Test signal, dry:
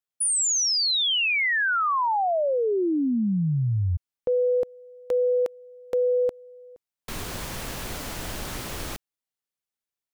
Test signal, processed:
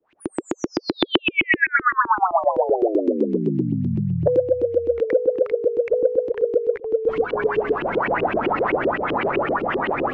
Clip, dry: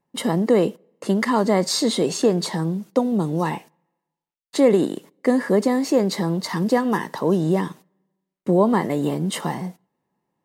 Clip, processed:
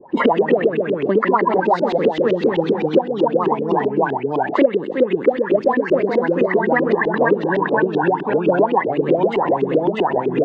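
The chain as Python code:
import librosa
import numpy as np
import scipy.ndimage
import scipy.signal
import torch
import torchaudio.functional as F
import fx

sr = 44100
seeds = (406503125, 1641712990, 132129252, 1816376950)

y = fx.spec_quant(x, sr, step_db=30)
y = fx.echo_pitch(y, sr, ms=92, semitones=-1, count=3, db_per_echo=-3.0)
y = fx.low_shelf(y, sr, hz=220.0, db=-8.0)
y = fx.filter_lfo_lowpass(y, sr, shape='saw_up', hz=7.8, low_hz=300.0, high_hz=3000.0, q=7.8)
y = scipy.signal.sosfilt(scipy.signal.butter(4, 8500.0, 'lowpass', fs=sr, output='sos'), y)
y = fx.high_shelf(y, sr, hz=4500.0, db=-6.0)
y = fx.band_squash(y, sr, depth_pct=100)
y = y * librosa.db_to_amplitude(-3.0)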